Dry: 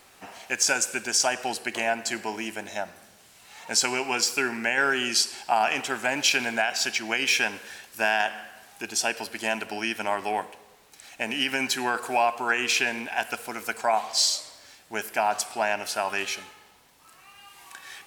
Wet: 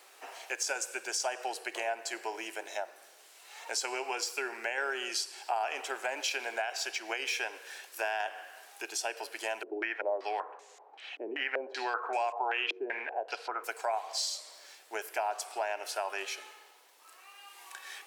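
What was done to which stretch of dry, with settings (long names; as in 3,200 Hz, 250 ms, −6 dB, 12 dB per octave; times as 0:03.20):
0:09.63–0:13.64: low-pass on a step sequencer 5.2 Hz 350–7,000 Hz
whole clip: Butterworth high-pass 350 Hz 36 dB per octave; dynamic equaliser 590 Hz, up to +5 dB, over −37 dBFS, Q 0.72; downward compressor 2 to 1, threshold −35 dBFS; level −2.5 dB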